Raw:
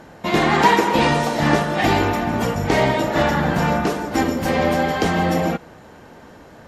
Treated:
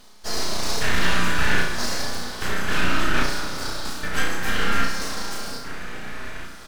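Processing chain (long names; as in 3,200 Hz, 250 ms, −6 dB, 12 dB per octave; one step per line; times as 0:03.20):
comb filter 4.7 ms, depth 74%
reversed playback
upward compression, threshold −22 dBFS
reversed playback
brickwall limiter −8 dBFS, peak gain reduction 5 dB
hard clipping −14.5 dBFS, distortion −14 dB
auto-filter high-pass square 0.62 Hz 770–2,500 Hz
full-wave rectification
flutter between parallel walls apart 5.7 metres, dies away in 0.55 s
convolution reverb RT60 5.0 s, pre-delay 78 ms, DRR 8 dB
level −4 dB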